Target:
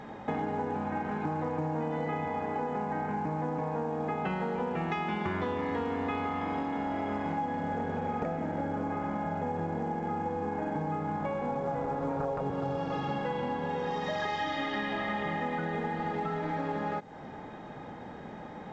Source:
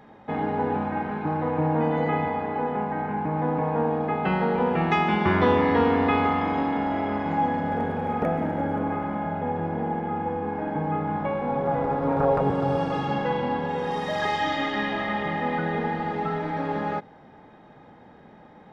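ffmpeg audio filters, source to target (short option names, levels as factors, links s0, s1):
-af "acompressor=threshold=0.0158:ratio=8,volume=2" -ar 16000 -c:a pcm_alaw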